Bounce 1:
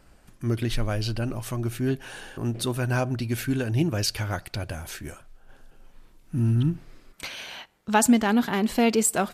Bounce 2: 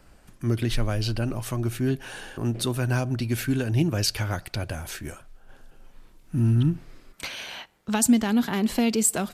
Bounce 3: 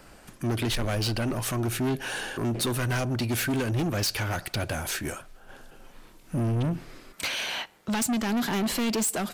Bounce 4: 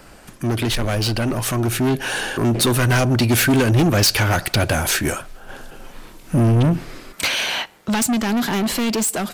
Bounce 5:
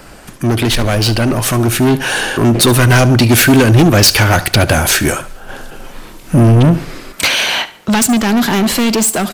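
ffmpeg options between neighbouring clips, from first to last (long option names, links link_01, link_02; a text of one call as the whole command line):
ffmpeg -i in.wav -filter_complex "[0:a]acrossover=split=290|3000[link_01][link_02][link_03];[link_02]acompressor=threshold=-29dB:ratio=6[link_04];[link_01][link_04][link_03]amix=inputs=3:normalize=0,volume=1.5dB" out.wav
ffmpeg -i in.wav -af "lowshelf=frequency=130:gain=-10,alimiter=limit=-15dB:level=0:latency=1:release=459,asoftclip=type=tanh:threshold=-31dB,volume=7.5dB" out.wav
ffmpeg -i in.wav -af "dynaudnorm=framelen=270:gausssize=17:maxgain=5dB,volume=6.5dB" out.wav
ffmpeg -i in.wav -af "aecho=1:1:72|144|216:0.141|0.0523|0.0193,volume=7.5dB" out.wav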